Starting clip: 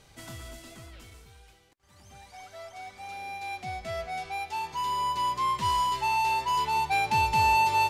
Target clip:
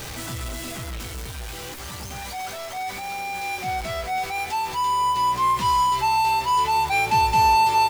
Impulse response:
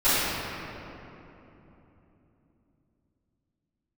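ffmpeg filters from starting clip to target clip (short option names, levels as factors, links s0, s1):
-filter_complex "[0:a]aeval=exprs='val(0)+0.5*0.0224*sgn(val(0))':c=same,asplit=2[s0][s1];[s1]adelay=16,volume=0.398[s2];[s0][s2]amix=inputs=2:normalize=0,volume=1.41"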